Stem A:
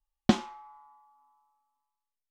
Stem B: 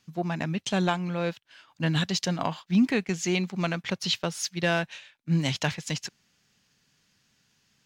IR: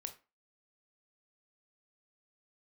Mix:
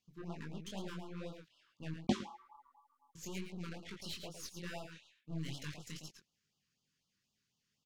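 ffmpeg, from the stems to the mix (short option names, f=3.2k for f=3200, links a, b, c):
-filter_complex "[0:a]adelay=1800,volume=-1dB,asplit=2[a][b];[b]volume=-21.5dB[c];[1:a]aeval=exprs='(tanh(25.1*val(0)+0.75)-tanh(0.75))/25.1':c=same,volume=-9dB,asplit=3[d][e][f];[d]atrim=end=1.94,asetpts=PTS-STARTPTS,afade=t=out:st=1.936:d=0.004:c=hsin[g];[e]atrim=start=1.94:end=3.15,asetpts=PTS-STARTPTS,volume=0[h];[f]atrim=start=3.15,asetpts=PTS-STARTPTS,afade=t=in:d=0.004:c=hsin[i];[g][h][i]concat=n=3:v=0:a=1,asplit=3[j][k][l];[k]volume=-8dB[m];[l]apad=whole_len=181218[n];[a][n]sidechaincompress=threshold=-47dB:ratio=8:attack=16:release=472[o];[c][m]amix=inputs=2:normalize=0,aecho=0:1:110:1[p];[o][j][p]amix=inputs=3:normalize=0,flanger=delay=19:depth=6.3:speed=2.3,afftfilt=real='re*(1-between(b*sr/1024,630*pow(2000/630,0.5+0.5*sin(2*PI*4*pts/sr))/1.41,630*pow(2000/630,0.5+0.5*sin(2*PI*4*pts/sr))*1.41))':imag='im*(1-between(b*sr/1024,630*pow(2000/630,0.5+0.5*sin(2*PI*4*pts/sr))/1.41,630*pow(2000/630,0.5+0.5*sin(2*PI*4*pts/sr))*1.41))':win_size=1024:overlap=0.75"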